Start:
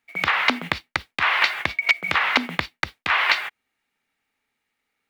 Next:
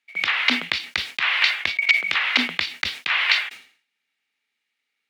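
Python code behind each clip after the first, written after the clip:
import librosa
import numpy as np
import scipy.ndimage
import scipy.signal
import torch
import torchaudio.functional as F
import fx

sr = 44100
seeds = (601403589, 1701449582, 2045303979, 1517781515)

y = fx.weighting(x, sr, curve='D')
y = fx.sustainer(y, sr, db_per_s=120.0)
y = y * librosa.db_to_amplitude(-8.5)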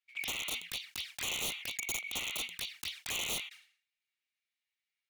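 y = fx.tone_stack(x, sr, knobs='10-0-10')
y = (np.mod(10.0 ** (19.0 / 20.0) * y + 1.0, 2.0) - 1.0) / 10.0 ** (19.0 / 20.0)
y = fx.env_flanger(y, sr, rest_ms=8.9, full_db=-26.0)
y = y * librosa.db_to_amplitude(-7.0)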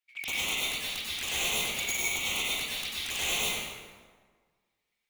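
y = fx.rev_plate(x, sr, seeds[0], rt60_s=1.6, hf_ratio=0.6, predelay_ms=80, drr_db=-7.0)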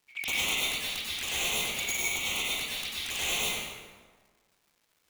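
y = fx.rider(x, sr, range_db=10, speed_s=2.0)
y = fx.dmg_crackle(y, sr, seeds[1], per_s=540.0, level_db=-57.0)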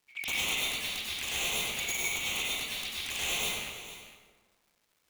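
y = fx.rattle_buzz(x, sr, strikes_db=-48.0, level_db=-27.0)
y = y + 10.0 ** (-14.0 / 20.0) * np.pad(y, (int(454 * sr / 1000.0), 0))[:len(y)]
y = y * librosa.db_to_amplitude(-2.0)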